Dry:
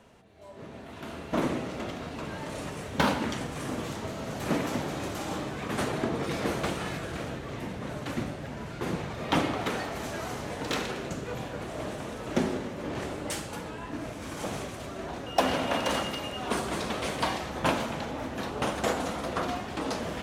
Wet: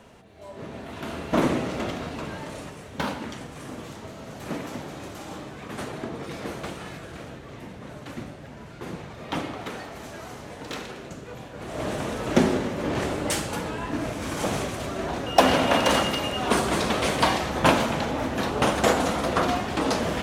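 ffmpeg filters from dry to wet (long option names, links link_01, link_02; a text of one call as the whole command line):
ffmpeg -i in.wav -af "volume=17.5dB,afade=type=out:start_time=1.85:duration=0.93:silence=0.316228,afade=type=in:start_time=11.54:duration=0.41:silence=0.266073" out.wav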